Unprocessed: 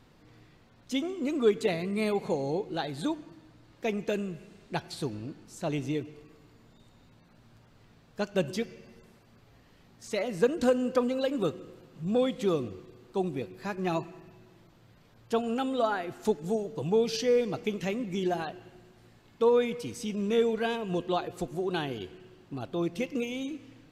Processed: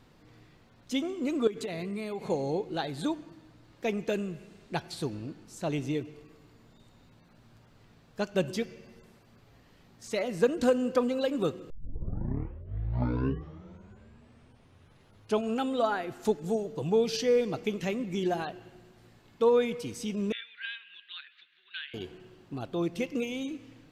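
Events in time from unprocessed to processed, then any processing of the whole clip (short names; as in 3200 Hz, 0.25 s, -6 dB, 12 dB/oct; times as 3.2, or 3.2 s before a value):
1.47–2.3 compressor 12:1, threshold -31 dBFS
11.7 tape start 3.90 s
20.32–21.94 elliptic band-pass 1600–3800 Hz, stop band 50 dB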